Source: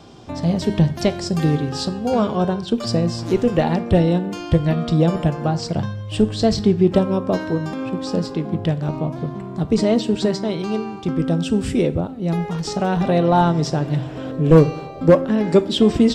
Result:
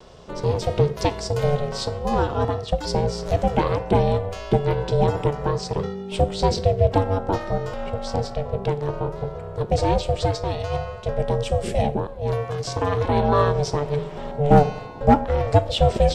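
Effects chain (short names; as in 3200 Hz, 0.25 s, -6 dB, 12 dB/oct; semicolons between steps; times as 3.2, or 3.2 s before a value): ring modulator 290 Hz; vibrato 0.37 Hz 15 cents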